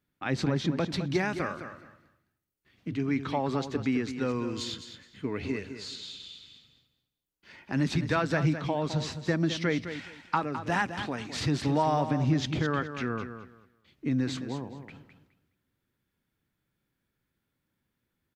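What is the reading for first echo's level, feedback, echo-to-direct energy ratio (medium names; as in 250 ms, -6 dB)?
-10.0 dB, 21%, -10.0 dB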